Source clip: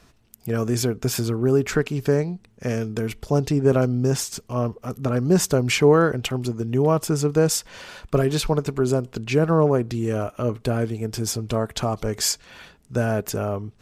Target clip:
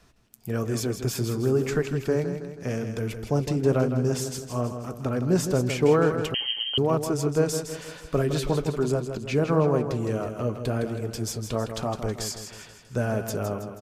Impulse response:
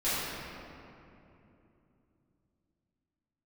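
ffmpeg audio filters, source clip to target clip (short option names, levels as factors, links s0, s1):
-filter_complex "[0:a]acrossover=split=630|870[s0][s1][s2];[s2]alimiter=limit=0.126:level=0:latency=1:release=155[s3];[s0][s1][s3]amix=inputs=3:normalize=0,flanger=delay=1.1:depth=9.1:regen=-70:speed=1:shape=triangular,aecho=1:1:161|322|483|644|805|966:0.376|0.184|0.0902|0.0442|0.0217|0.0106,asettb=1/sr,asplit=3[s4][s5][s6];[s4]atrim=end=6.344[s7];[s5]atrim=start=6.34:end=6.78,asetpts=PTS-STARTPTS,afade=t=in:d=0.004:c=qsin,afade=t=out:st=0.436:d=0.004:c=qsin,lowpass=f=2800:t=q:w=0.5098,lowpass=f=2800:t=q:w=0.6013,lowpass=f=2800:t=q:w=0.9,lowpass=f=2800:t=q:w=2.563,afreqshift=-3300[s8];[s6]atrim=start=6.776[s9];[s7][s8]acrossfade=d=0.004:c1=hsin:c2=qsin[s10];[s10][s9]acrossfade=d=0.004:c1=qsin:c2=hsin"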